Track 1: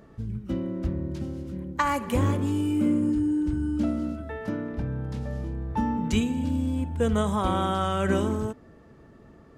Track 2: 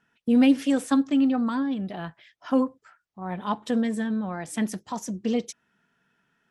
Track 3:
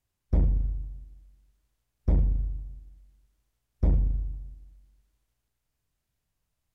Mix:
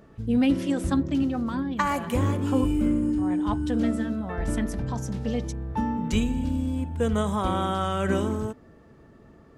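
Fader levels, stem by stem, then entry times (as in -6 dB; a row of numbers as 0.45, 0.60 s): -0.5, -3.5, -8.0 dB; 0.00, 0.00, 2.30 s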